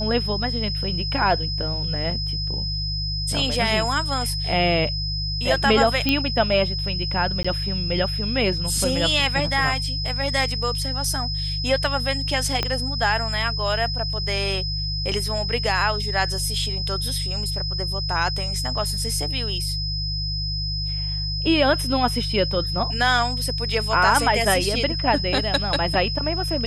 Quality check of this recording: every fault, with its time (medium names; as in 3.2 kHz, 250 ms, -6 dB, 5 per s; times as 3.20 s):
hum 50 Hz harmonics 3 -28 dBFS
whine 5.1 kHz -27 dBFS
6.09 s: pop -6 dBFS
7.43–7.45 s: dropout 15 ms
12.63 s: pop -8 dBFS